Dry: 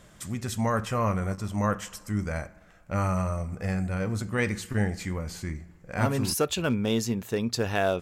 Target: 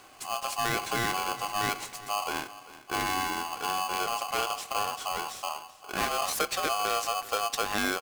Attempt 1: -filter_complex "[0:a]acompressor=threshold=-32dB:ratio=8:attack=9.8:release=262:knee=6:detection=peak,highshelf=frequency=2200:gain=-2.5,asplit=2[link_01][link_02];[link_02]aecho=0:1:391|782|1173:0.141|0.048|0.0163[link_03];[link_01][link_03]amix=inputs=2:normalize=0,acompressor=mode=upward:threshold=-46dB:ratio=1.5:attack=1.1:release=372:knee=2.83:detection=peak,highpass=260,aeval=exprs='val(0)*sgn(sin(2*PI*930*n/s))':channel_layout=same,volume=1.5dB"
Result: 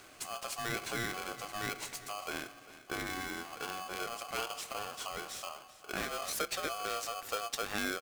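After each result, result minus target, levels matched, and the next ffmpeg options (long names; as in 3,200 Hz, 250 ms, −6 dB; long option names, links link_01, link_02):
downward compressor: peak gain reduction +6 dB; 250 Hz band +2.5 dB
-filter_complex "[0:a]acompressor=threshold=-25dB:ratio=8:attack=9.8:release=262:knee=6:detection=peak,highshelf=frequency=2200:gain=-2.5,asplit=2[link_01][link_02];[link_02]aecho=0:1:391|782|1173:0.141|0.048|0.0163[link_03];[link_01][link_03]amix=inputs=2:normalize=0,acompressor=mode=upward:threshold=-46dB:ratio=1.5:attack=1.1:release=372:knee=2.83:detection=peak,highpass=260,aeval=exprs='val(0)*sgn(sin(2*PI*930*n/s))':channel_layout=same,volume=1.5dB"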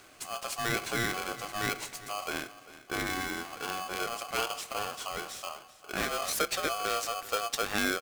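250 Hz band +3.0 dB
-filter_complex "[0:a]acompressor=threshold=-25dB:ratio=8:attack=9.8:release=262:knee=6:detection=peak,highshelf=frequency=2200:gain=-2.5,asplit=2[link_01][link_02];[link_02]aecho=0:1:391|782|1173:0.141|0.048|0.0163[link_03];[link_01][link_03]amix=inputs=2:normalize=0,acompressor=mode=upward:threshold=-46dB:ratio=1.5:attack=1.1:release=372:knee=2.83:detection=peak,highpass=98,aeval=exprs='val(0)*sgn(sin(2*PI*930*n/s))':channel_layout=same,volume=1.5dB"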